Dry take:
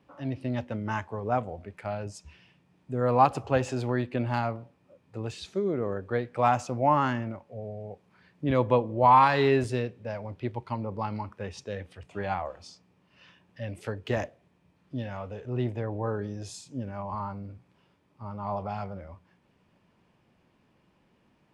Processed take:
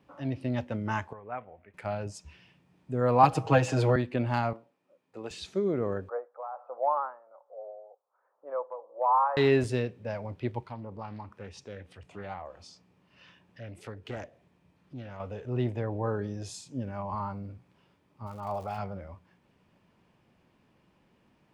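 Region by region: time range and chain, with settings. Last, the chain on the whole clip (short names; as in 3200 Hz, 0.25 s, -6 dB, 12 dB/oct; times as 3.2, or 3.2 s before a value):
1.13–1.74 ladder low-pass 2700 Hz, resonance 40% + low shelf 440 Hz -10 dB
3.23–3.96 comb 6.4 ms, depth 97% + three-band squash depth 70%
4.53–5.31 HPF 280 Hz + upward expander, over -49 dBFS
6.09–9.37 Chebyshev band-pass 510–1300 Hz, order 3 + compressor 2:1, threshold -23 dBFS + tremolo 1.3 Hz, depth 78%
10.65–15.2 compressor 1.5:1, threshold -51 dBFS + Doppler distortion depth 0.35 ms
18.26–18.77 bell 170 Hz -7 dB 1.6 oct + notch 990 Hz, Q 9.9 + crackle 250/s -44 dBFS
whole clip: dry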